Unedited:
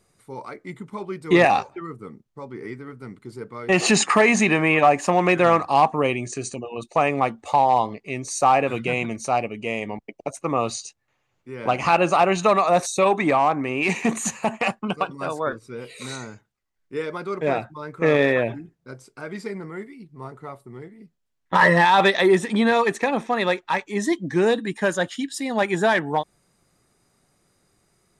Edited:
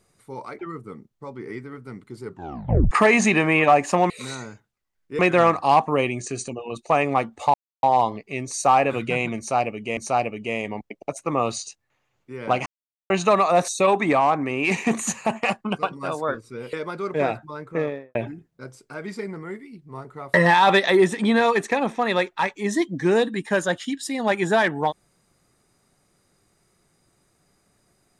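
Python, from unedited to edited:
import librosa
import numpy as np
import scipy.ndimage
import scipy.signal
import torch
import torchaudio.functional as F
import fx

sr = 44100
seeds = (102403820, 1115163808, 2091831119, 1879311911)

y = fx.studio_fade_out(x, sr, start_s=17.75, length_s=0.67)
y = fx.edit(y, sr, fx.cut(start_s=0.59, length_s=1.15),
    fx.tape_stop(start_s=3.39, length_s=0.67),
    fx.insert_silence(at_s=7.6, length_s=0.29),
    fx.repeat(start_s=9.15, length_s=0.59, count=2),
    fx.silence(start_s=11.84, length_s=0.44),
    fx.move(start_s=15.91, length_s=1.09, to_s=5.25),
    fx.cut(start_s=20.61, length_s=1.04), tone=tone)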